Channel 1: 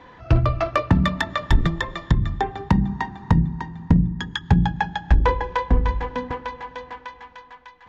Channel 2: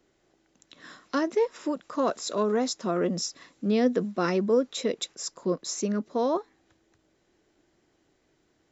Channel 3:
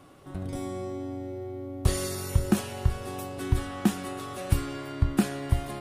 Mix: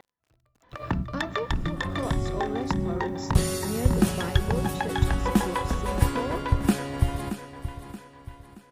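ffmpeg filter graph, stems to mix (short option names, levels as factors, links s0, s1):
-filter_complex "[0:a]acompressor=threshold=0.1:ratio=3,volume=1.12,asplit=2[s0][s1];[s1]volume=0.178[s2];[1:a]lowpass=f=3600:p=1,acrusher=bits=9:mix=0:aa=0.000001,volume=0.631,asplit=2[s3][s4];[2:a]adelay=1500,volume=1.19,asplit=2[s5][s6];[s6]volume=0.282[s7];[s4]apad=whole_len=347586[s8];[s0][s8]sidechaingate=range=0.00447:threshold=0.00141:ratio=16:detection=peak[s9];[s9][s3]amix=inputs=2:normalize=0,acompressor=threshold=0.02:ratio=1.5,volume=1[s10];[s2][s7]amix=inputs=2:normalize=0,aecho=0:1:626|1252|1878|2504|3130|3756:1|0.4|0.16|0.064|0.0256|0.0102[s11];[s5][s10][s11]amix=inputs=3:normalize=0"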